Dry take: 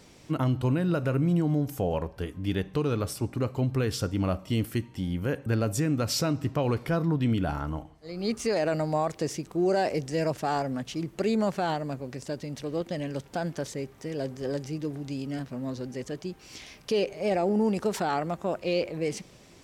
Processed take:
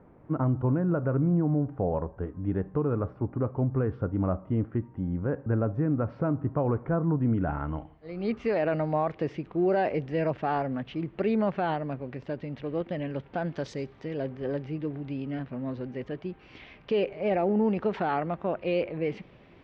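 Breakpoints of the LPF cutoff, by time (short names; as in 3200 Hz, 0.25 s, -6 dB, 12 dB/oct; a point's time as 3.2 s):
LPF 24 dB/oct
7.28 s 1400 Hz
7.8 s 2900 Hz
13.44 s 2900 Hz
13.72 s 5300 Hz
14.26 s 2900 Hz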